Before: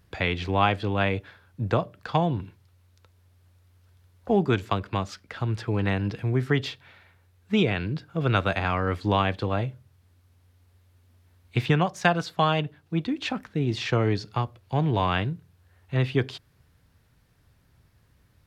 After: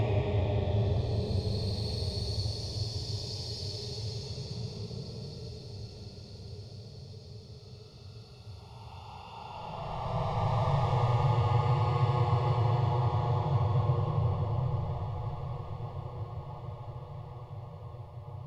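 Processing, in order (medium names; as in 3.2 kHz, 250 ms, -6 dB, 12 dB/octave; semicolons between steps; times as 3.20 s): valve stage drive 28 dB, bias 0.3; static phaser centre 650 Hz, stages 4; Paulstretch 46×, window 0.05 s, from 14.14 s; treble shelf 4 kHz -12 dB; on a send: echo that smears into a reverb 1755 ms, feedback 56%, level -12 dB; on the sum: trim +6.5 dB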